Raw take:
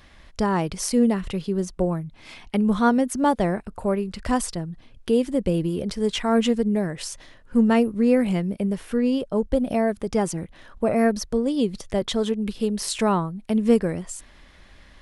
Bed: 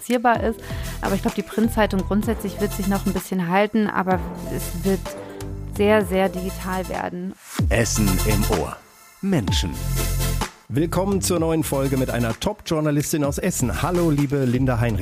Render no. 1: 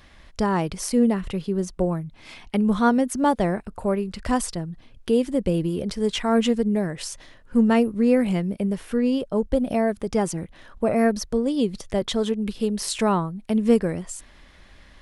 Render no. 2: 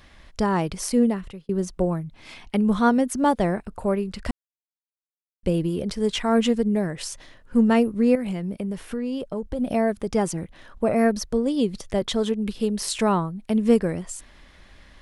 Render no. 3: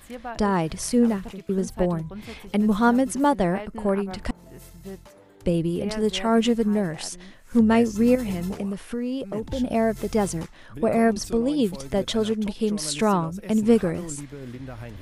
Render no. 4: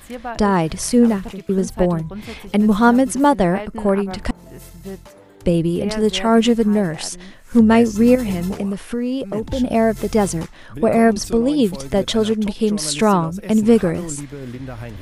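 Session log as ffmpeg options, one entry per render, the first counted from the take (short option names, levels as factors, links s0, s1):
-filter_complex "[0:a]asettb=1/sr,asplit=3[s0][s1][s2];[s0]atrim=end=0.724[s3];[s1]atrim=start=0.72:end=1.63,asetpts=PTS-STARTPTS,afade=t=in:d=0.004:c=qsin,afade=t=out:st=0.906:d=0.004:c=qsin,equalizer=f=5500:w=0.63:g=-3[s4];[s2]atrim=start=1.626[s5];[s3][s4]acrossfade=d=0.004:c1=hsin:c2=qsin[s6];[s6][s5]acrossfade=d=0.004:c1=qsin:c2=hsin"
-filter_complex "[0:a]asettb=1/sr,asplit=3[s0][s1][s2];[s0]atrim=end=8.154[s3];[s1]atrim=start=8.15:end=9.59,asetpts=PTS-STARTPTS,afade=t=in:d=0.004:c=qsin,afade=t=out:st=1.436:d=0.004:c=qsin,acompressor=threshold=0.0562:ratio=4:attack=3.2:release=140:knee=1:detection=peak[s4];[s2]atrim=start=9.586[s5];[s3][s4]acrossfade=d=0.004:c1=hsin:c2=qsin[s6];[s6][s5]acrossfade=d=0.004:c1=qsin:c2=hsin,asplit=4[s7][s8][s9][s10];[s7]atrim=end=1.49,asetpts=PTS-STARTPTS,afade=t=out:st=1:d=0.49[s11];[s8]atrim=start=1.49:end=4.31,asetpts=PTS-STARTPTS,afade=t=in:d=0.004:c=hsin,afade=t=out:st=2.816:d=0.004:c=hsin[s12];[s9]atrim=start=4.31:end=5.43,asetpts=PTS-STARTPTS,volume=0[s13];[s10]atrim=start=5.43,asetpts=PTS-STARTPTS,afade=t=in:d=0.004:c=hsin[s14];[s11][s12][s13][s14]concat=n=4:v=0:a=1"
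-filter_complex "[1:a]volume=0.133[s0];[0:a][s0]amix=inputs=2:normalize=0"
-af "volume=2,alimiter=limit=0.794:level=0:latency=1"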